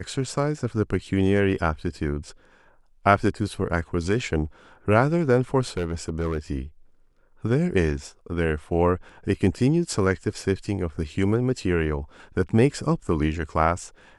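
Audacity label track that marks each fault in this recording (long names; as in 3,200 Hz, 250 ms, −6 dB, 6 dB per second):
5.770000	6.390000	clipping −21.5 dBFS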